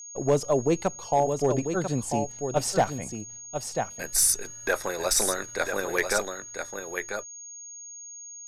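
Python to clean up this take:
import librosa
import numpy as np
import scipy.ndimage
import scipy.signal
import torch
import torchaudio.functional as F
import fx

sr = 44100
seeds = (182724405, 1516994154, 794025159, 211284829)

y = fx.fix_declip(x, sr, threshold_db=-14.0)
y = fx.notch(y, sr, hz=6600.0, q=30.0)
y = fx.fix_echo_inverse(y, sr, delay_ms=993, level_db=-7.0)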